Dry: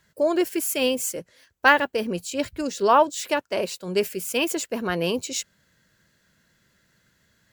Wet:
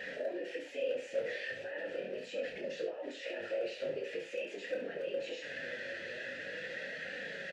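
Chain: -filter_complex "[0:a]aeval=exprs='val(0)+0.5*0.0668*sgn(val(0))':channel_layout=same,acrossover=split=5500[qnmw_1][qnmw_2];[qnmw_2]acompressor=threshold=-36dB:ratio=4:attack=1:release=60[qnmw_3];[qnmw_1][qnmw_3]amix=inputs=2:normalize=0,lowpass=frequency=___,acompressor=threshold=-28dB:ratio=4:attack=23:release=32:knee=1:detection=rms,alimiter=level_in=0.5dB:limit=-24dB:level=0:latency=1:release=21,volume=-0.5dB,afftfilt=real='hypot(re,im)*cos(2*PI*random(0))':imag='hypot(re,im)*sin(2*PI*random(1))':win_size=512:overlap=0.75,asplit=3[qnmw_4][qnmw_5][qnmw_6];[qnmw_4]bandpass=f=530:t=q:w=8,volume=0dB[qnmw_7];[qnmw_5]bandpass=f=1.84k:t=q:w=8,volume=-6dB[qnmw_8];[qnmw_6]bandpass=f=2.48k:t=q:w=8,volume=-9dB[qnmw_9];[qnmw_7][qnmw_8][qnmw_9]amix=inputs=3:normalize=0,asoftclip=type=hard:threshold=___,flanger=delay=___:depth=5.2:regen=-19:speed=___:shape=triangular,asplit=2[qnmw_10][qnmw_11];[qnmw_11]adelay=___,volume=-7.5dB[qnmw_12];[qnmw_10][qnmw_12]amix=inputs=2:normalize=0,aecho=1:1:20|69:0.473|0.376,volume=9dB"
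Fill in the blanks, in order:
7.4k, -36dB, 3.8, 0.42, 31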